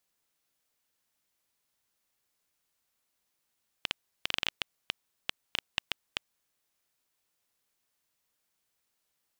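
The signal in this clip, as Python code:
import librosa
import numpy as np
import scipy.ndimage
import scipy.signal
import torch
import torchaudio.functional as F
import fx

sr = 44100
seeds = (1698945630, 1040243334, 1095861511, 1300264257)

y = fx.geiger_clicks(sr, seeds[0], length_s=2.58, per_s=7.1, level_db=-10.5)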